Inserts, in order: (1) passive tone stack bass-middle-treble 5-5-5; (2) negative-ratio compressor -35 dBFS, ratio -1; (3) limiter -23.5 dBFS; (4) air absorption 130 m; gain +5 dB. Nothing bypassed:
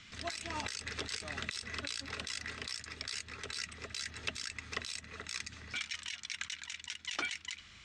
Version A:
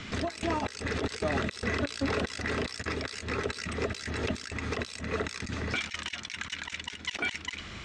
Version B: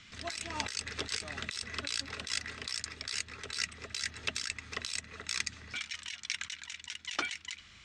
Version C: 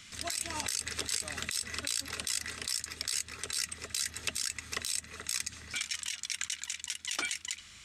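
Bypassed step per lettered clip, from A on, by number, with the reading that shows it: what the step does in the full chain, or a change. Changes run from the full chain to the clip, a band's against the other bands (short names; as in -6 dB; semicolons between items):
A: 1, 8 kHz band -12.5 dB; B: 3, crest factor change +4.0 dB; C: 4, 8 kHz band +11.0 dB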